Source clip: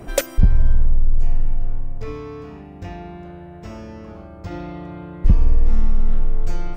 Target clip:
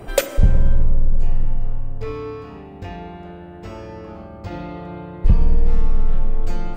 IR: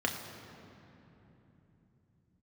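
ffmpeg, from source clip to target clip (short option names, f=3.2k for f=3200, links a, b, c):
-filter_complex "[0:a]asplit=2[a][b];[1:a]atrim=start_sample=2205,asetrate=74970,aresample=44100[c];[b][c]afir=irnorm=-1:irlink=0,volume=-6dB[d];[a][d]amix=inputs=2:normalize=0,volume=-1.5dB"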